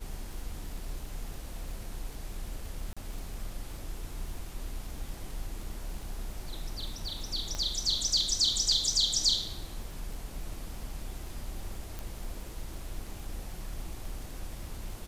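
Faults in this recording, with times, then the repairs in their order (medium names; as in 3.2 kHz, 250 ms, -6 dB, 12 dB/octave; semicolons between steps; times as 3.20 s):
crackle 56 per s -40 dBFS
2.93–2.97 s: dropout 36 ms
7.55 s: pop -21 dBFS
11.99 s: pop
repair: de-click; interpolate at 2.93 s, 36 ms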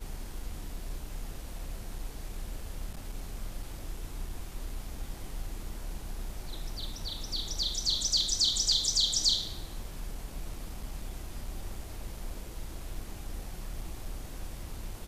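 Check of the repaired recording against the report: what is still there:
nothing left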